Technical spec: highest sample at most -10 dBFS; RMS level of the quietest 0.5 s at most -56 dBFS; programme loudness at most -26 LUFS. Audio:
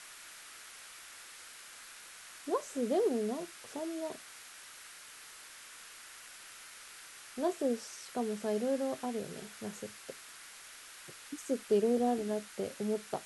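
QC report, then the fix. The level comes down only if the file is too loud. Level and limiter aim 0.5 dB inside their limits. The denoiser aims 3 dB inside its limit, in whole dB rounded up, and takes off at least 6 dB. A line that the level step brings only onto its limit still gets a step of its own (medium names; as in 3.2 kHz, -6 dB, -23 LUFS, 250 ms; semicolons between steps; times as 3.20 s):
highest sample -18.5 dBFS: pass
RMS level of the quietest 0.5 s -52 dBFS: fail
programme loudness -35.5 LUFS: pass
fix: noise reduction 7 dB, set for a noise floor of -52 dBFS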